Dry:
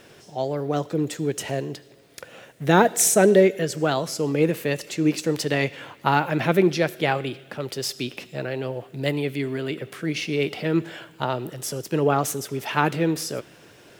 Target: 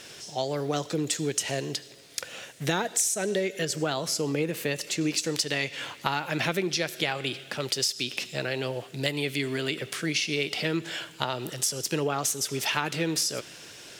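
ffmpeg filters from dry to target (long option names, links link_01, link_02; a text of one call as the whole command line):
ffmpeg -i in.wav -af "asetnsamples=nb_out_samples=441:pad=0,asendcmd='3.65 equalizer g 7.5;5.01 equalizer g 14.5',equalizer=frequency=6000:width=0.37:gain=14.5,acompressor=threshold=-21dB:ratio=10,volume=-2.5dB" out.wav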